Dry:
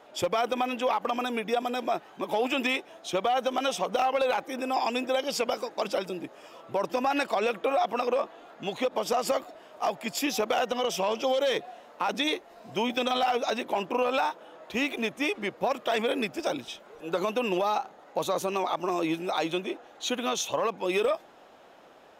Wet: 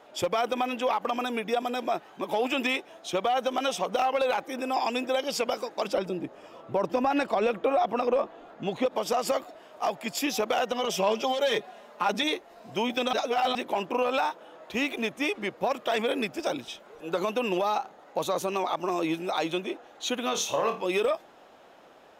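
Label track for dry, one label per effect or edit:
5.930000	8.860000	tilt EQ -2 dB/octave
10.820000	12.230000	comb 4.9 ms
13.130000	13.550000	reverse
20.310000	20.840000	flutter echo walls apart 4.6 m, dies away in 0.29 s

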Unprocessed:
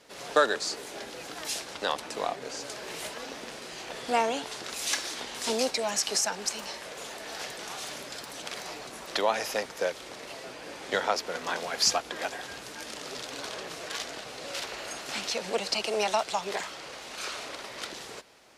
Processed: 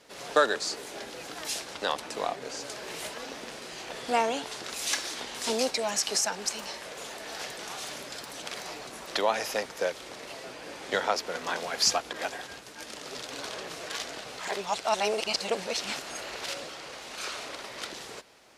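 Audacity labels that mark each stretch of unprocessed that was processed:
12.130000	13.290000	expander -39 dBFS
14.390000	16.690000	reverse

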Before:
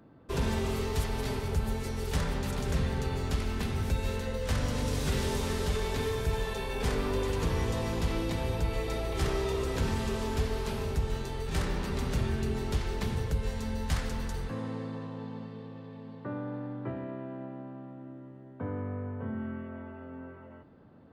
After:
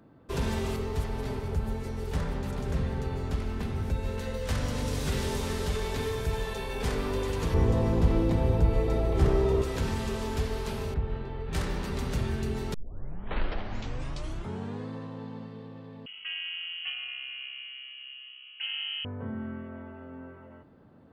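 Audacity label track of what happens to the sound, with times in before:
0.760000	4.180000	treble shelf 2 kHz -8.5 dB
7.540000	9.620000	tilt shelf lows +7.5 dB, about 1.3 kHz
10.940000	11.530000	distance through air 430 m
12.740000	12.740000	tape start 2.17 s
16.060000	19.050000	frequency inversion carrier 3.1 kHz

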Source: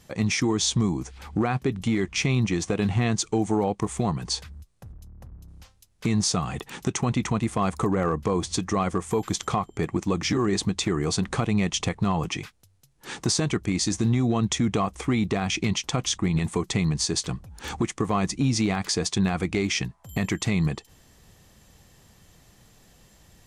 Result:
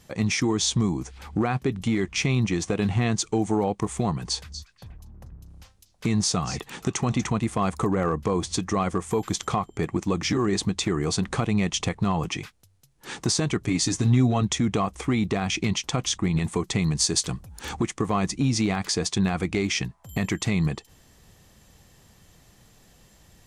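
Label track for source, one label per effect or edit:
4.120000	7.280000	repeats whose band climbs or falls 240 ms, band-pass from 5.3 kHz, each repeat -1.4 oct, level -10 dB
13.600000	14.430000	comb 7.3 ms, depth 71%
16.820000	17.650000	treble shelf 6.7 kHz +8.5 dB

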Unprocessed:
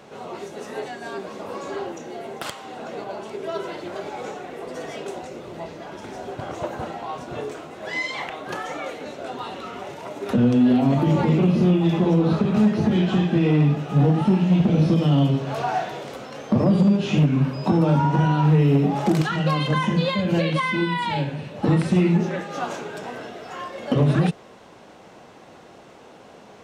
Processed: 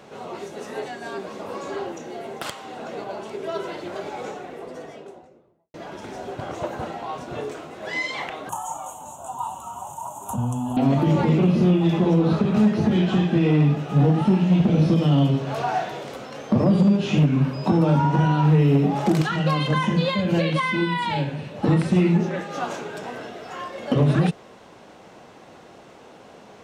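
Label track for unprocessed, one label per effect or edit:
4.140000	5.740000	studio fade out
8.490000	10.770000	FFT filter 110 Hz 0 dB, 450 Hz -21 dB, 930 Hz +10 dB, 2 kHz -30 dB, 3 kHz -8 dB, 4.8 kHz -26 dB, 6.8 kHz +14 dB
21.740000	22.370000	tape noise reduction on one side only decoder only

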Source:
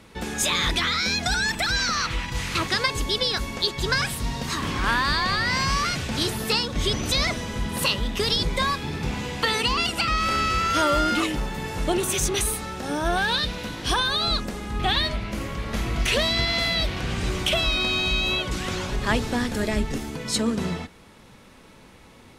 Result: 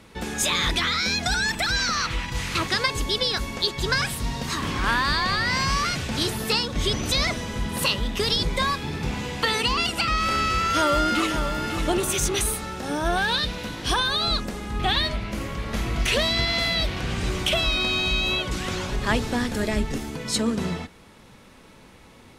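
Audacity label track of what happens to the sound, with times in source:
10.590000	11.440000	echo throw 550 ms, feedback 35%, level -8 dB

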